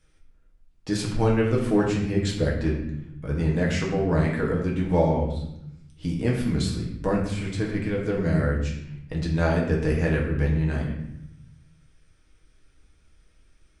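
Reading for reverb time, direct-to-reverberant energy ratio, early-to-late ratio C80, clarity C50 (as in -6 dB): 0.80 s, -3.0 dB, 7.0 dB, 4.5 dB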